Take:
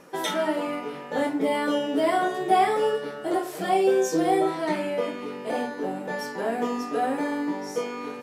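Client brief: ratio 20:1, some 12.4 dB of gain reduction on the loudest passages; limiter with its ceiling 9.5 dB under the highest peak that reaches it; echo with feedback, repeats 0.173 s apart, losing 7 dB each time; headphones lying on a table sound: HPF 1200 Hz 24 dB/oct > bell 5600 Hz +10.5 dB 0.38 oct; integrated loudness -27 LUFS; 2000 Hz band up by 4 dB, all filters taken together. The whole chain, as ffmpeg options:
-af "equalizer=f=2k:t=o:g=5,acompressor=threshold=-27dB:ratio=20,alimiter=level_in=3.5dB:limit=-24dB:level=0:latency=1,volume=-3.5dB,highpass=f=1.2k:w=0.5412,highpass=f=1.2k:w=1.3066,equalizer=f=5.6k:t=o:w=0.38:g=10.5,aecho=1:1:173|346|519|692|865:0.447|0.201|0.0905|0.0407|0.0183,volume=13dB"

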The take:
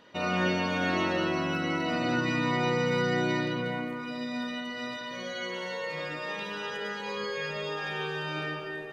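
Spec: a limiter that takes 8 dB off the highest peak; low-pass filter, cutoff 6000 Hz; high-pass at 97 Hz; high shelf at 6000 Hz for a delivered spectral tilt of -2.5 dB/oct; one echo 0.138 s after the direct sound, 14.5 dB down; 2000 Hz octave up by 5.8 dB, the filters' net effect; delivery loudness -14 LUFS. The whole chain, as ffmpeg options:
-af "highpass=97,lowpass=6k,equalizer=f=2k:t=o:g=8,highshelf=f=6k:g=-5,alimiter=limit=-21.5dB:level=0:latency=1,aecho=1:1:138:0.188,volume=16dB"

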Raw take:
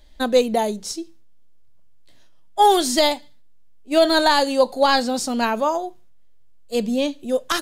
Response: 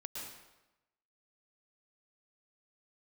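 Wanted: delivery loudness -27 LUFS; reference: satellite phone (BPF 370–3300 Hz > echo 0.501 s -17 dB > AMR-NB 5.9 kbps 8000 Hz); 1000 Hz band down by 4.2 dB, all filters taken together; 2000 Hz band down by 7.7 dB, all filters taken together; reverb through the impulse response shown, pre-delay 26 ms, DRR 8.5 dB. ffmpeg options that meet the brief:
-filter_complex "[0:a]equalizer=f=1k:t=o:g=-3.5,equalizer=f=2k:t=o:g=-8.5,asplit=2[a][b];[1:a]atrim=start_sample=2205,adelay=26[c];[b][c]afir=irnorm=-1:irlink=0,volume=-7.5dB[d];[a][d]amix=inputs=2:normalize=0,highpass=370,lowpass=3.3k,aecho=1:1:501:0.141,volume=-3dB" -ar 8000 -c:a libopencore_amrnb -b:a 5900

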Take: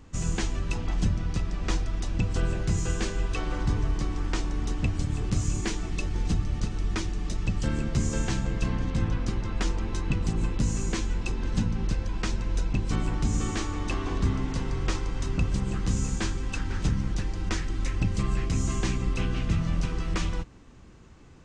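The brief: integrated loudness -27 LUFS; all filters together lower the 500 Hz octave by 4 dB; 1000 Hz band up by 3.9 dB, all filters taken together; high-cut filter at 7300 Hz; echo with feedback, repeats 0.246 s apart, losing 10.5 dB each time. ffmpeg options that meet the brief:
-af "lowpass=7.3k,equalizer=f=500:t=o:g=-7,equalizer=f=1k:t=o:g=6.5,aecho=1:1:246|492|738:0.299|0.0896|0.0269,volume=2.5dB"

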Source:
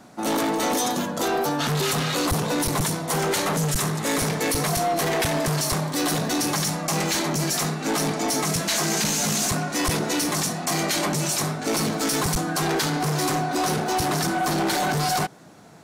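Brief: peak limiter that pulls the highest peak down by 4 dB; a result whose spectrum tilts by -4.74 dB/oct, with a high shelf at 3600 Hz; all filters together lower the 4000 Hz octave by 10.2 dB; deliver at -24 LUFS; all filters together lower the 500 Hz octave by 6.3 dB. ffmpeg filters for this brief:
-af "equalizer=f=500:t=o:g=-8.5,highshelf=f=3.6k:g=-8.5,equalizer=f=4k:t=o:g=-7,volume=5.5dB,alimiter=limit=-16.5dB:level=0:latency=1"

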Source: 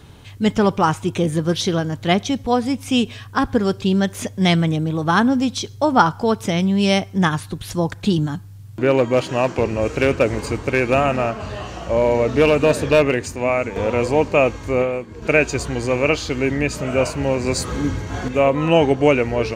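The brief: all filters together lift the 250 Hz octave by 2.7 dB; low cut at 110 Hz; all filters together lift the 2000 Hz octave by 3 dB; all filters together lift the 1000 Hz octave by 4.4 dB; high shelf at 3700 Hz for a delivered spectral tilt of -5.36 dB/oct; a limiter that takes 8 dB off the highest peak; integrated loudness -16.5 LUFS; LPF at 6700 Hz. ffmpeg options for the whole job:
-af "highpass=110,lowpass=6.7k,equalizer=f=250:t=o:g=3.5,equalizer=f=1k:t=o:g=5,equalizer=f=2k:t=o:g=5,highshelf=f=3.7k:g=-8.5,volume=1.5dB,alimiter=limit=-3.5dB:level=0:latency=1"

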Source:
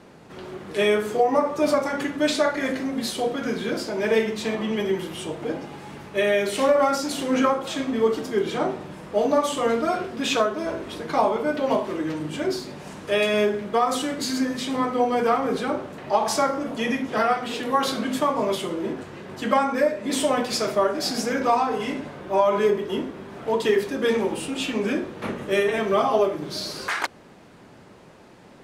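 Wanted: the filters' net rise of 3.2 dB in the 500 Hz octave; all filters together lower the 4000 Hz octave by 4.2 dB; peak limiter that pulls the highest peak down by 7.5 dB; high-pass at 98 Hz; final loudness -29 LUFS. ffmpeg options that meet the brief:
-af "highpass=98,equalizer=f=500:t=o:g=4,equalizer=f=4k:t=o:g=-5.5,volume=-5.5dB,alimiter=limit=-17dB:level=0:latency=1"

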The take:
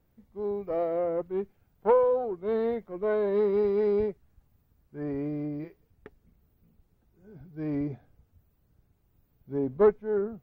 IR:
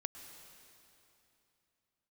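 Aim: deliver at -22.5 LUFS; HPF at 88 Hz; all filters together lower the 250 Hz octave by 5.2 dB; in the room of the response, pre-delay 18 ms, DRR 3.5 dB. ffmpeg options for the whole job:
-filter_complex "[0:a]highpass=88,equalizer=f=250:t=o:g=-7,asplit=2[a][b];[1:a]atrim=start_sample=2205,adelay=18[c];[b][c]afir=irnorm=-1:irlink=0,volume=-1.5dB[d];[a][d]amix=inputs=2:normalize=0,volume=6.5dB"

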